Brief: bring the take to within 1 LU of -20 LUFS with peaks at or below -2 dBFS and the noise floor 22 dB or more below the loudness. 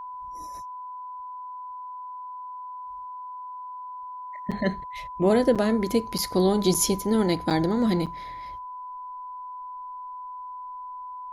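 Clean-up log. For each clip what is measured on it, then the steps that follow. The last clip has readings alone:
dropouts 6; longest dropout 6.5 ms; steady tone 1000 Hz; tone level -35 dBFS; loudness -28.0 LUFS; peak -9.0 dBFS; loudness target -20.0 LUFS
-> interpolate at 4.51/5.55/6.18/6.74/7.5/8.06, 6.5 ms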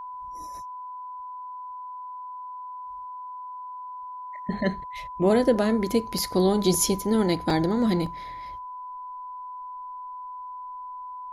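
dropouts 0; steady tone 1000 Hz; tone level -35 dBFS
-> notch 1000 Hz, Q 30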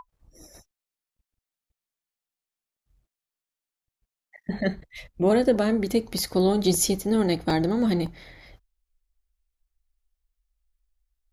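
steady tone none; loudness -24.0 LUFS; peak -9.0 dBFS; loudness target -20.0 LUFS
-> gain +4 dB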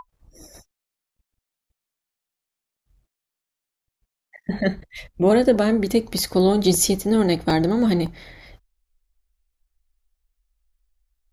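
loudness -20.0 LUFS; peak -5.0 dBFS; noise floor -86 dBFS

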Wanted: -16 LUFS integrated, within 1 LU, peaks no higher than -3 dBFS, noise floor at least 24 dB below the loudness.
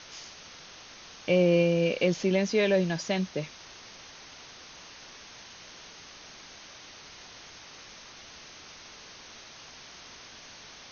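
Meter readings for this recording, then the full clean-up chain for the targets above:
noise floor -49 dBFS; noise floor target -50 dBFS; loudness -26.0 LUFS; peak -12.0 dBFS; loudness target -16.0 LUFS
-> denoiser 6 dB, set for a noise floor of -49 dBFS; gain +10 dB; limiter -3 dBFS

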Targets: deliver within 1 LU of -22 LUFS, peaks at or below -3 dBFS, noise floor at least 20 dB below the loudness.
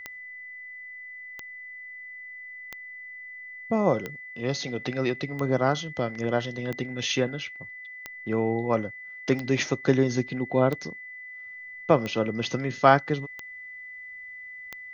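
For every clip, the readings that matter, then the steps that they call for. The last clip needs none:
clicks 12; steady tone 2000 Hz; tone level -39 dBFS; loudness -26.5 LUFS; peak -3.0 dBFS; loudness target -22.0 LUFS
-> de-click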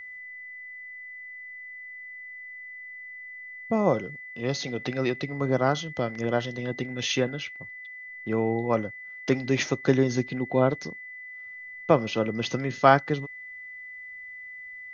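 clicks 0; steady tone 2000 Hz; tone level -39 dBFS
-> notch 2000 Hz, Q 30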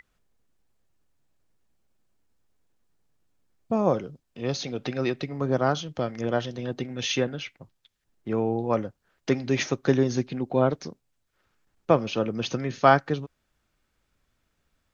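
steady tone none; loudness -26.5 LUFS; peak -3.5 dBFS; loudness target -22.0 LUFS
-> gain +4.5 dB; limiter -3 dBFS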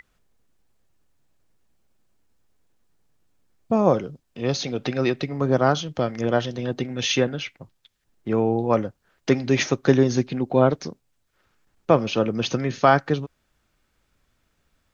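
loudness -22.5 LUFS; peak -3.0 dBFS; noise floor -71 dBFS

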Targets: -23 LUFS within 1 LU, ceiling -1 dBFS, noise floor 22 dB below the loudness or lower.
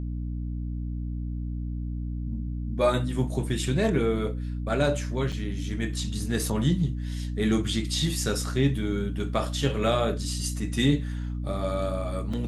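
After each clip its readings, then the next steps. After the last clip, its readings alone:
dropouts 2; longest dropout 5.2 ms; hum 60 Hz; harmonics up to 300 Hz; hum level -29 dBFS; loudness -28.0 LUFS; peak -10.5 dBFS; loudness target -23.0 LUFS
-> interpolate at 5.32/12.33, 5.2 ms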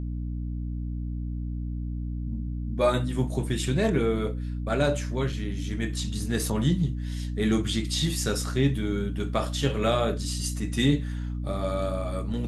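dropouts 0; hum 60 Hz; harmonics up to 300 Hz; hum level -29 dBFS
-> de-hum 60 Hz, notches 5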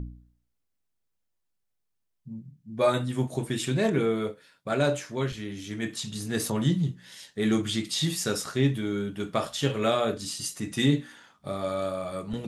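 hum none; loudness -28.5 LUFS; peak -10.5 dBFS; loudness target -23.0 LUFS
-> gain +5.5 dB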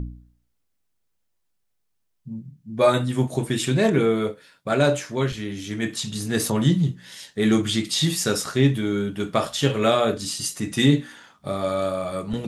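loudness -23.0 LUFS; peak -5.0 dBFS; noise floor -72 dBFS

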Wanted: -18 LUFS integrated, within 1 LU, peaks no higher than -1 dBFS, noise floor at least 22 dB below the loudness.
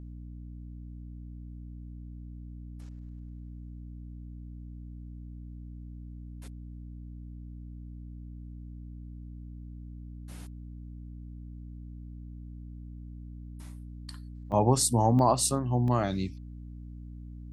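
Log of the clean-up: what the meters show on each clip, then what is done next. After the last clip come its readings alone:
dropouts 3; longest dropout 1.4 ms; hum 60 Hz; harmonics up to 300 Hz; hum level -40 dBFS; loudness -26.5 LUFS; peak -11.0 dBFS; loudness target -18.0 LUFS
-> interpolate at 14.52/15.19/15.88, 1.4 ms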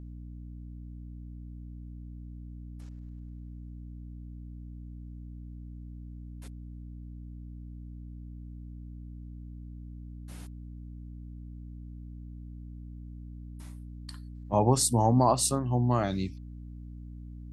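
dropouts 0; hum 60 Hz; harmonics up to 300 Hz; hum level -40 dBFS
-> notches 60/120/180/240/300 Hz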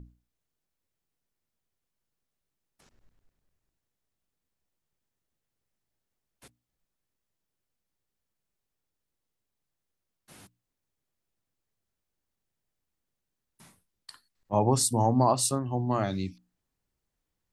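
hum none; loudness -26.5 LUFS; peak -11.5 dBFS; loudness target -18.0 LUFS
-> gain +8.5 dB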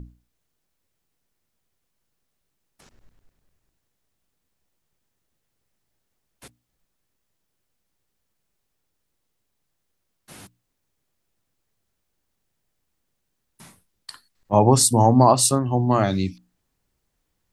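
loudness -18.0 LUFS; peak -3.0 dBFS; noise floor -76 dBFS

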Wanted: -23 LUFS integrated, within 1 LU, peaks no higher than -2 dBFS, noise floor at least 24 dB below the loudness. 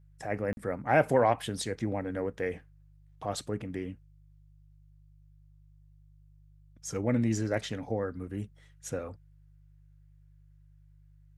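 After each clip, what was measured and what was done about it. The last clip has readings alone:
dropouts 1; longest dropout 41 ms; hum 50 Hz; harmonics up to 150 Hz; hum level -57 dBFS; loudness -32.0 LUFS; peak -11.0 dBFS; loudness target -23.0 LUFS
-> interpolate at 0.53, 41 ms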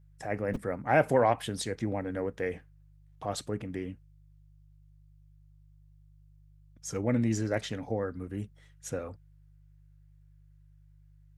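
dropouts 0; hum 50 Hz; harmonics up to 150 Hz; hum level -57 dBFS
-> de-hum 50 Hz, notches 3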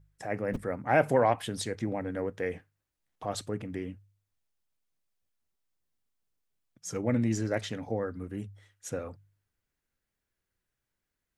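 hum none; loudness -31.5 LUFS; peak -11.0 dBFS; loudness target -23.0 LUFS
-> gain +8.5 dB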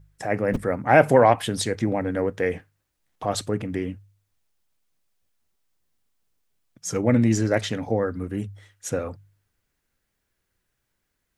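loudness -23.0 LUFS; peak -2.5 dBFS; noise floor -77 dBFS

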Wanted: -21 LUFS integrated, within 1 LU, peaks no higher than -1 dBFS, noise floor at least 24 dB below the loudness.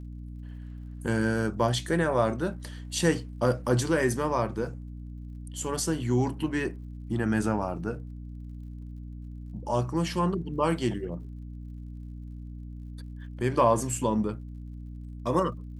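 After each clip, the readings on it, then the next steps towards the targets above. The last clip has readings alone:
ticks 47/s; hum 60 Hz; harmonics up to 300 Hz; hum level -37 dBFS; loudness -28.0 LUFS; peak -10.0 dBFS; loudness target -21.0 LUFS
-> de-click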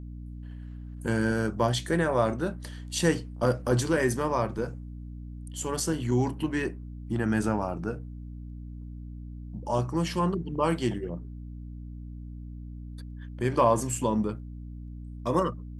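ticks 0.13/s; hum 60 Hz; harmonics up to 300 Hz; hum level -37 dBFS
-> notches 60/120/180/240/300 Hz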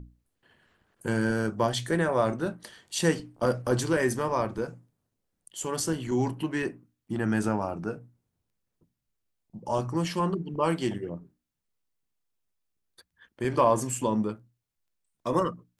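hum none; loudness -28.5 LUFS; peak -10.5 dBFS; loudness target -21.0 LUFS
-> gain +7.5 dB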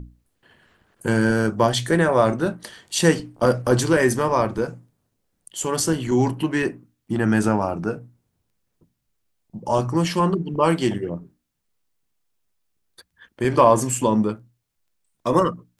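loudness -21.0 LUFS; peak -3.0 dBFS; noise floor -75 dBFS

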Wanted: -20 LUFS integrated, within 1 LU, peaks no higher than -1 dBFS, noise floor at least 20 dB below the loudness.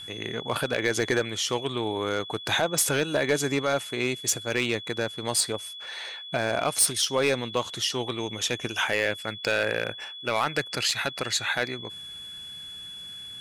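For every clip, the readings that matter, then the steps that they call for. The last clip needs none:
clipped 0.4%; flat tops at -15.5 dBFS; steady tone 3400 Hz; tone level -38 dBFS; loudness -26.5 LUFS; peak -15.5 dBFS; loudness target -20.0 LUFS
-> clip repair -15.5 dBFS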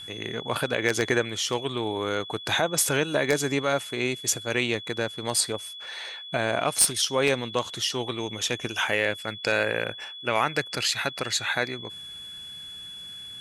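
clipped 0.0%; steady tone 3400 Hz; tone level -38 dBFS
-> notch 3400 Hz, Q 30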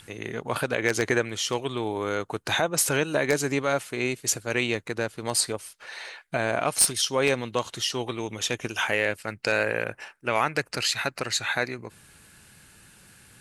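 steady tone none; loudness -26.5 LUFS; peak -6.5 dBFS; loudness target -20.0 LUFS
-> gain +6.5 dB; limiter -1 dBFS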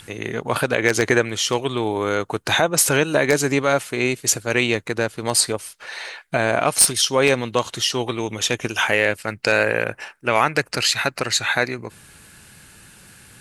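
loudness -20.0 LUFS; peak -1.0 dBFS; noise floor -49 dBFS

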